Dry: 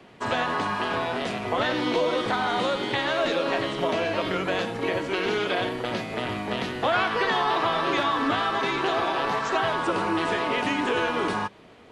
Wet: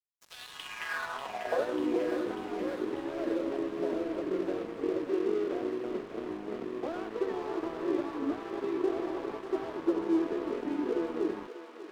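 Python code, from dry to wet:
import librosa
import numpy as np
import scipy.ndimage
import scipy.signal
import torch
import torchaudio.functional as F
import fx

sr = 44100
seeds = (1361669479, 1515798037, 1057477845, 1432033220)

y = fx.filter_sweep_bandpass(x, sr, from_hz=6800.0, to_hz=350.0, start_s=0.19, end_s=1.8, q=4.2)
y = np.sign(y) * np.maximum(np.abs(y) - 10.0 ** (-46.5 / 20.0), 0.0)
y = fx.echo_thinned(y, sr, ms=592, feedback_pct=70, hz=920.0, wet_db=-6.5)
y = y * librosa.db_to_amplitude(3.5)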